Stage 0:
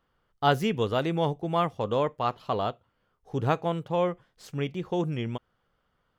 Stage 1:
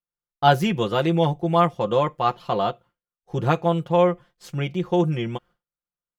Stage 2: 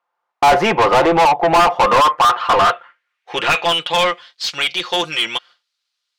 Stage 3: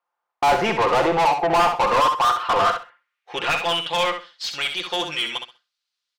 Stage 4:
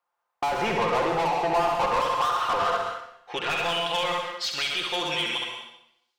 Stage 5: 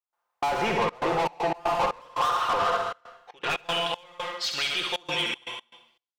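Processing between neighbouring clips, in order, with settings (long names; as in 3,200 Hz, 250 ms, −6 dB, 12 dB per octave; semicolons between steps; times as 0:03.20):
downward expander −48 dBFS; comb filter 5.7 ms, depth 72%; level +3.5 dB
band-pass filter sweep 870 Hz → 4,300 Hz, 0:01.69–0:04.27; mid-hump overdrive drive 38 dB, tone 3,000 Hz, clips at −6.5 dBFS; level +2.5 dB
repeating echo 65 ms, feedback 20%, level −7 dB; level −6.5 dB
brickwall limiter −21 dBFS, peak gain reduction 11.5 dB; dense smooth reverb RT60 0.75 s, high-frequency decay 0.95×, pre-delay 105 ms, DRR 3.5 dB
gate pattern ".xxxxxx.xx.x.xx." 118 BPM −24 dB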